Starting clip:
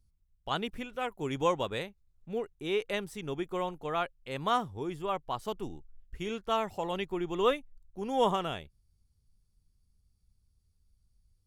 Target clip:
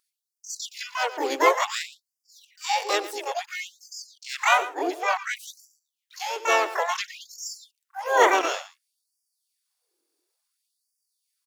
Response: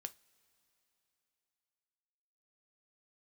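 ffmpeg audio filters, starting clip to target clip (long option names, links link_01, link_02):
-filter_complex "[0:a]acontrast=61,aecho=1:1:113:0.178,asplit=4[link_01][link_02][link_03][link_04];[link_02]asetrate=35002,aresample=44100,atempo=1.25992,volume=-9dB[link_05];[link_03]asetrate=55563,aresample=44100,atempo=0.793701,volume=-9dB[link_06];[link_04]asetrate=88200,aresample=44100,atempo=0.5,volume=-1dB[link_07];[link_01][link_05][link_06][link_07]amix=inputs=4:normalize=0,afftfilt=real='re*gte(b*sr/1024,260*pow(4700/260,0.5+0.5*sin(2*PI*0.57*pts/sr)))':imag='im*gte(b*sr/1024,260*pow(4700/260,0.5+0.5*sin(2*PI*0.57*pts/sr)))':win_size=1024:overlap=0.75"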